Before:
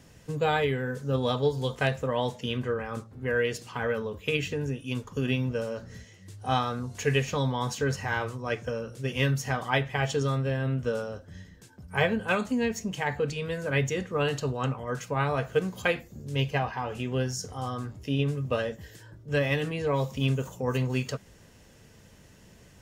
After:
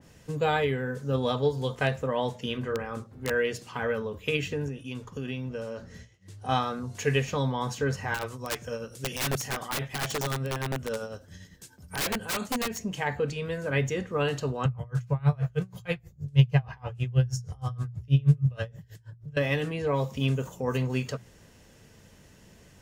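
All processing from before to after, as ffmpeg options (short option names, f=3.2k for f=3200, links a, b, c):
-filter_complex "[0:a]asettb=1/sr,asplit=3[a][b][c];[a]atrim=end=2.534[d];[b]atrim=start=2.53:end=3.31,asetpts=PTS-STARTPTS,afade=t=in:d=0.004:c=qsin,afade=t=out:st=0.776:d=0.004:c=qsin,bandreject=f=60:t=h:w=6,bandreject=f=120:t=h:w=6,bandreject=f=180:t=h:w=6,bandreject=f=240:t=h:w=6,bandreject=f=300:t=h:w=6,bandreject=f=360:t=h:w=6,bandreject=f=420:t=h:w=6,bandreject=f=480:t=h:w=6,bandreject=f=540:t=h:w=6,aeval=exprs='(mod(11.2*val(0)+1,2)-1)/11.2':c=same[e];[c]atrim=start=3.306[f];[d][e]acrossfade=d=0.004:c1=hsin:c2=qsin[g];[g][f]acrossfade=d=0.004:c1=qsin:c2=hsin,asettb=1/sr,asplit=3[h][i][j];[h]atrim=end=4.684[k];[i]atrim=start=4.68:end=6.49,asetpts=PTS-STARTPTS,afade=t=in:d=0.004:c=qsin,afade=t=out:st=1.806:d=0.004:c=qsin,agate=range=-33dB:threshold=-45dB:ratio=3:release=100:detection=peak,highshelf=f=9.8k:g=-5.5,acompressor=threshold=-34dB:ratio=2:attack=3.2:release=140:knee=1:detection=peak[l];[j]atrim=start=6.486[m];[k][l]acrossfade=d=0.004:c1=hsin:c2=qsin[n];[n][m]acrossfade=d=0.004:c1=qsin:c2=hsin,asettb=1/sr,asplit=3[o][p][q];[o]atrim=end=8.144[r];[p]atrim=start=8.14:end=12.79,asetpts=PTS-STARTPTS,afade=t=in:d=0.004:c=qsin,afade=t=out:st=4.646:d=0.004:c=qsin,highshelf=f=3.7k:g=11,tremolo=f=10:d=0.53,aeval=exprs='(mod(13.3*val(0)+1,2)-1)/13.3':c=same[s];[q]atrim=start=12.786[t];[r][s]acrossfade=d=0.004:c1=hsin:c2=qsin[u];[u][t]acrossfade=d=0.004:c1=qsin:c2=hsin,asettb=1/sr,asplit=3[v][w][x];[v]atrim=end=14.654[y];[w]atrim=start=14.65:end=19.37,asetpts=PTS-STARTPTS,afade=t=in:d=0.004:c=qsin,afade=t=out:st=4.716:d=0.004:c=qsin,lowshelf=f=190:t=q:w=3:g=8,aeval=exprs='val(0)*pow(10,-30*(0.5-0.5*cos(2*PI*6.3*n/s))/20)':c=same[z];[x]atrim=start=19.366[aa];[y][z]acrossfade=d=0.004:c1=hsin:c2=qsin[ab];[ab][aa]acrossfade=d=0.004:c1=qsin:c2=hsin,bandreject=f=60:t=h:w=6,bandreject=f=120:t=h:w=6,adynamicequalizer=threshold=0.00794:dfrequency=2300:dqfactor=0.7:tfrequency=2300:tqfactor=0.7:attack=5:release=100:ratio=0.375:range=2:mode=cutabove:tftype=highshelf"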